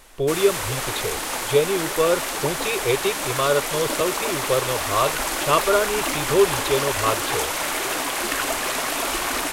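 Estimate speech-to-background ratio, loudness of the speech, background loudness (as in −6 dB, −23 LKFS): 1.0 dB, −23.5 LKFS, −24.5 LKFS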